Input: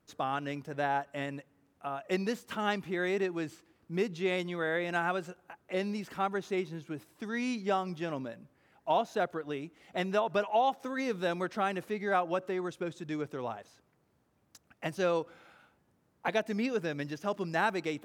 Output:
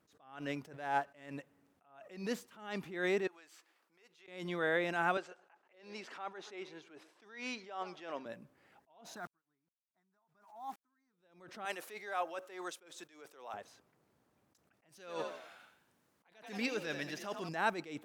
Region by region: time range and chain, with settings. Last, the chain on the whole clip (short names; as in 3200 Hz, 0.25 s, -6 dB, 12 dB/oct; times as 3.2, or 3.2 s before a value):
0.76–1.34 median filter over 9 samples + bell 2700 Hz +2.5 dB 1.9 oct
3.27–4.28 HPF 800 Hz + compressor 8:1, threshold -54 dBFS
5.17–8.26 BPF 440–5800 Hz + warbling echo 0.128 s, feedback 31%, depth 158 cents, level -24 dB
9.16–11.13 fixed phaser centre 1200 Hz, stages 4 + compressor, threshold -34 dBFS + sample gate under -53 dBFS
11.65–13.54 HPF 510 Hz + high shelf 4600 Hz +8.5 dB
14.89–17.49 tilt shelf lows -4.5 dB, about 1200 Hz + frequency-shifting echo 87 ms, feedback 44%, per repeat +46 Hz, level -10 dB
whole clip: low shelf 120 Hz -10 dB; attack slew limiter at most 100 dB/s